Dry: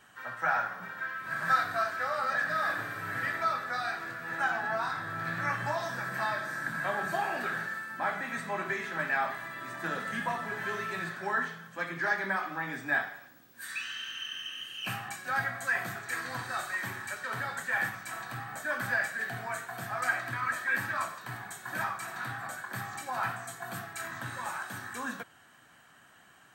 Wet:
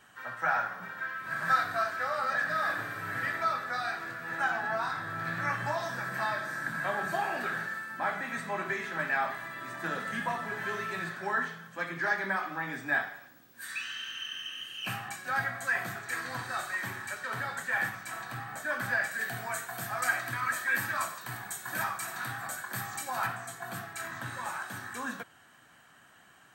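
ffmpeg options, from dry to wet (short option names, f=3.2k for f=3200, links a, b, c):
-filter_complex "[0:a]asettb=1/sr,asplit=3[a][b][c];[a]atrim=end=19.114[d];[b]atrim=start=19.11:end=23.27,asetpts=PTS-STARTPTS,afade=t=in:d=0.004:c=qsin,afade=t=out:st=4.156:d=0.004:c=qsin,aemphasis=mode=production:type=cd[e];[c]atrim=start=23.266[f];[d][e]acrossfade=d=0.004:c1=hsin:c2=qsin[g];[g][f]acrossfade=d=0.004:c1=qsin:c2=hsin"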